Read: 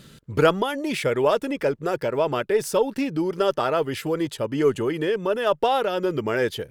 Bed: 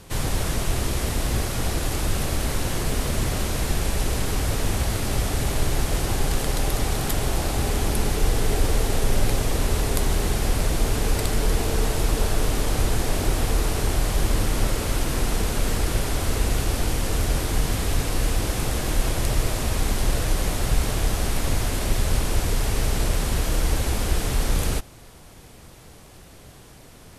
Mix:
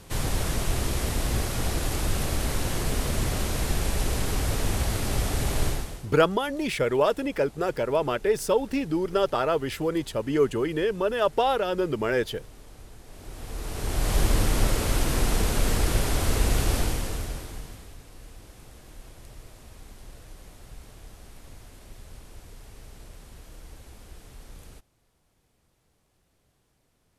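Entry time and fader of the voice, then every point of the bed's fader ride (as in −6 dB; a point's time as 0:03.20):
5.75 s, −2.0 dB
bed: 0:05.68 −2.5 dB
0:06.14 −25 dB
0:13.03 −25 dB
0:14.14 −0.5 dB
0:16.77 −0.5 dB
0:17.98 −23.5 dB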